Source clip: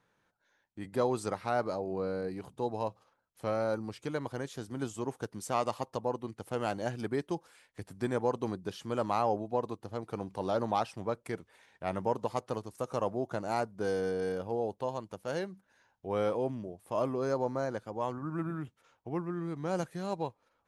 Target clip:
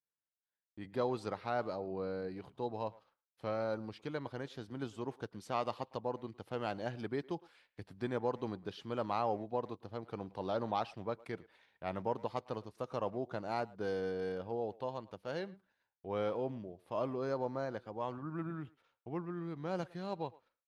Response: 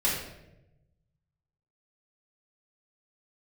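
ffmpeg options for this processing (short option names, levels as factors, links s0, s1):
-filter_complex "[0:a]agate=range=0.0224:threshold=0.00126:ratio=3:detection=peak,highshelf=f=5600:t=q:w=1.5:g=-10,asplit=2[s0][s1];[s1]adelay=110,highpass=300,lowpass=3400,asoftclip=type=hard:threshold=0.0562,volume=0.0891[s2];[s0][s2]amix=inputs=2:normalize=0,volume=0.562"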